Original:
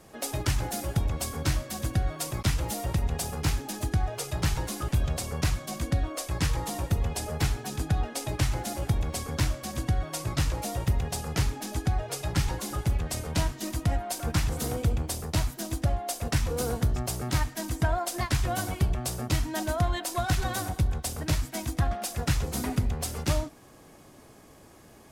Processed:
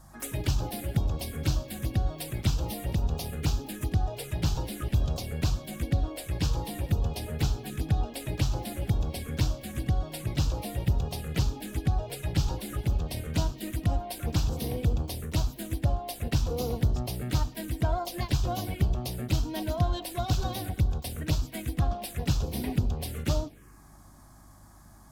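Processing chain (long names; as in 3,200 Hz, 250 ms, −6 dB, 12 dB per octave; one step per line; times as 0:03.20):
mains hum 50 Hz, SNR 27 dB
phaser swept by the level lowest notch 410 Hz, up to 2,000 Hz, full sweep at −23.5 dBFS
pitch-shifted copies added +7 semitones −17 dB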